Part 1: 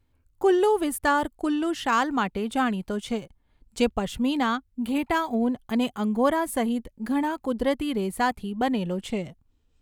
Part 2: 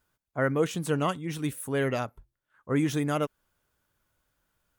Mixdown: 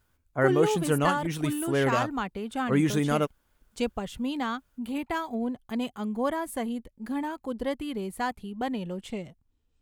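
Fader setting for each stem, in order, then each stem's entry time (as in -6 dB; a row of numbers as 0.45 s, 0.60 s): -6.0 dB, +2.0 dB; 0.00 s, 0.00 s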